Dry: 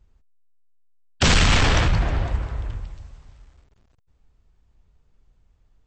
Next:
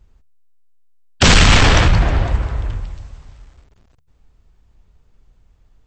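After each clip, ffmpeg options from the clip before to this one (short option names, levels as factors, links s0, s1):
-af "bandreject=f=73.45:t=h:w=4,bandreject=f=146.9:t=h:w=4,volume=2.24"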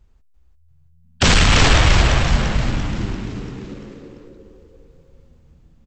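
-filter_complex "[0:a]dynaudnorm=f=250:g=7:m=1.78,asplit=2[s0][s1];[s1]asplit=7[s2][s3][s4][s5][s6][s7][s8];[s2]adelay=342,afreqshift=-83,volume=0.631[s9];[s3]adelay=684,afreqshift=-166,volume=0.335[s10];[s4]adelay=1026,afreqshift=-249,volume=0.178[s11];[s5]adelay=1368,afreqshift=-332,volume=0.0944[s12];[s6]adelay=1710,afreqshift=-415,volume=0.0495[s13];[s7]adelay=2052,afreqshift=-498,volume=0.0263[s14];[s8]adelay=2394,afreqshift=-581,volume=0.014[s15];[s9][s10][s11][s12][s13][s14][s15]amix=inputs=7:normalize=0[s16];[s0][s16]amix=inputs=2:normalize=0,volume=0.668"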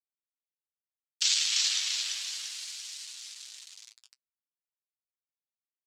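-af "acrusher=bits=4:mix=0:aa=0.000001,flanger=delay=7.4:depth=1.3:regen=41:speed=0.68:shape=sinusoidal,asuperpass=centerf=5700:order=4:qfactor=1.2"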